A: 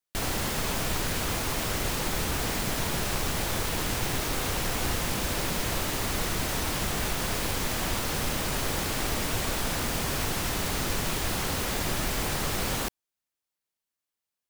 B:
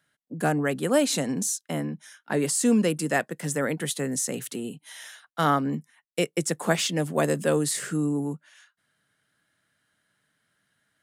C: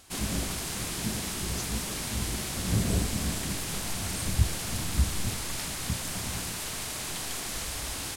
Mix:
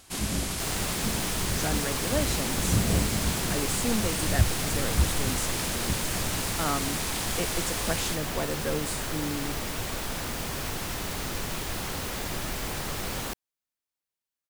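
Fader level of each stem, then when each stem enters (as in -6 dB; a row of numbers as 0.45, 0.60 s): -3.5, -8.0, +1.5 dB; 0.45, 1.20, 0.00 s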